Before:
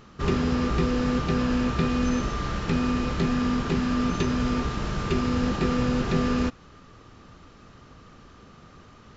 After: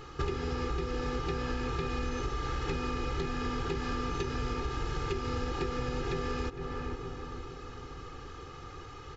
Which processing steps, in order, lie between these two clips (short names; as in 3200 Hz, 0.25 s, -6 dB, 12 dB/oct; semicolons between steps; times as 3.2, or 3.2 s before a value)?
comb 2.4 ms, depth 89%; on a send: darkening echo 0.46 s, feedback 49%, low-pass 1900 Hz, level -14 dB; on the sum: compressor 12:1, threshold -31 dBFS, peak gain reduction 15.5 dB; gain +1.5 dB